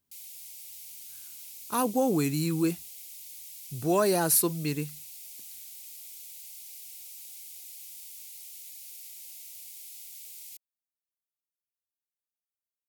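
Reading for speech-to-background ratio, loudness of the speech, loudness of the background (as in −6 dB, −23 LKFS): 15.5 dB, −26.5 LKFS, −42.0 LKFS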